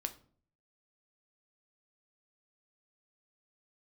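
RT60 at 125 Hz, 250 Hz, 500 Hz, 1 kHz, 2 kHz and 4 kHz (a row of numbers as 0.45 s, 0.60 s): 0.75 s, 0.65 s, 0.55 s, 0.45 s, 0.35 s, 0.30 s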